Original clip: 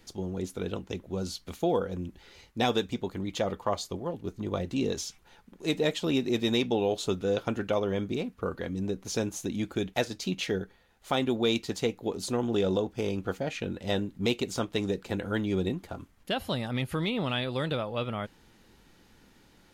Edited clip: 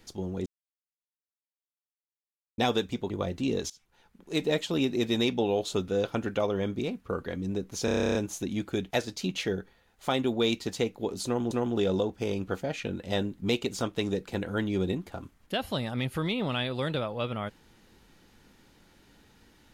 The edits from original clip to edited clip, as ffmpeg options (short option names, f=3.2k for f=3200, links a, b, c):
-filter_complex "[0:a]asplit=16[a][b][c][d][e][f][g][h][i][j][k][l][m][n][o][p];[a]atrim=end=0.46,asetpts=PTS-STARTPTS,afade=t=out:st=0.456:d=0.004:c=hsin[q];[b]atrim=start=0.46:end=2.58,asetpts=PTS-STARTPTS,volume=0[r];[c]atrim=start=2.58:end=3.102,asetpts=PTS-STARTPTS,afade=t=in:d=0.004:c=hsin[s];[d]atrim=start=4.428:end=5.03,asetpts=PTS-STARTPTS,afade=t=out:st=0.598:d=0.004:c=hsin:silence=0.105925[t];[e]atrim=start=5.03:end=9.212,asetpts=PTS-STARTPTS,afade=t=in:d=0.71:silence=0.105925[u];[f]atrim=start=9.178:end=9.212[v];[g]atrim=start=9.178:end=9.212[w];[h]atrim=start=9.178:end=9.212[x];[i]atrim=start=9.178:end=9.212[y];[j]atrim=start=9.178:end=9.212[z];[k]atrim=start=9.178:end=9.212[aa];[l]atrim=start=9.178:end=9.212[ab];[m]atrim=start=9.178:end=9.212[ac];[n]atrim=start=9.178:end=9.212[ad];[o]atrim=start=9.178:end=12.542[ae];[p]atrim=start=12.278[af];[q][r][s]concat=n=3:v=0:a=1[ag];[t][u]concat=n=2:v=0:a=1[ah];[ag][ah]acrossfade=d=0.004:c1=hsin:c2=hsin[ai];[ai][v]acrossfade=d=0.004:c1=hsin:c2=hsin[aj];[aj][w]acrossfade=d=0.004:c1=hsin:c2=hsin[ak];[ak][x]acrossfade=d=0.004:c1=hsin:c2=hsin[al];[al][y]acrossfade=d=0.004:c1=hsin:c2=hsin[am];[am][z]acrossfade=d=0.004:c1=hsin:c2=hsin[an];[an][aa]acrossfade=d=0.004:c1=hsin:c2=hsin[ao];[ao][ab]acrossfade=d=0.004:c1=hsin:c2=hsin[ap];[ap][ac]acrossfade=d=0.004:c1=hsin:c2=hsin[aq];[aq][ad]acrossfade=d=0.004:c1=hsin:c2=hsin[ar];[ar][ae]acrossfade=d=0.004:c1=hsin:c2=hsin[as];[as][af]acrossfade=d=0.004:c1=hsin:c2=hsin"